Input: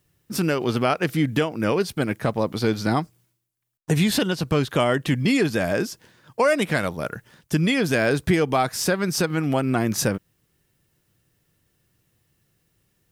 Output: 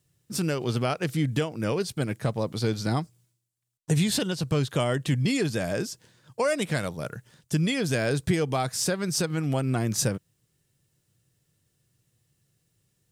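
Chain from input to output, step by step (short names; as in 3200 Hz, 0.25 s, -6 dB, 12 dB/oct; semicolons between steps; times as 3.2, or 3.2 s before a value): graphic EQ 125/500/4000/8000 Hz +9/+3/+4/+9 dB; gain -8.5 dB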